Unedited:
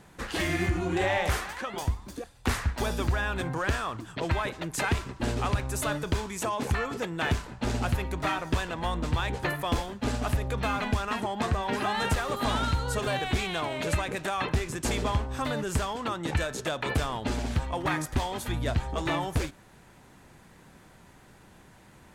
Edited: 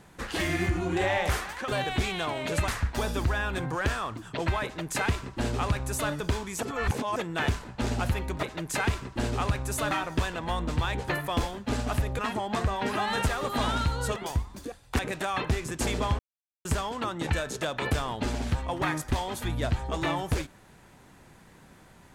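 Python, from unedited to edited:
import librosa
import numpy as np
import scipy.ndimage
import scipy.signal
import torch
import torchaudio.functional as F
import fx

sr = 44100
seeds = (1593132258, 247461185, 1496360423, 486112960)

y = fx.edit(x, sr, fx.swap(start_s=1.68, length_s=0.83, other_s=13.03, other_length_s=1.0),
    fx.duplicate(start_s=4.47, length_s=1.48, to_s=8.26),
    fx.reverse_span(start_s=6.46, length_s=0.53),
    fx.cut(start_s=10.54, length_s=0.52),
    fx.silence(start_s=15.23, length_s=0.46), tone=tone)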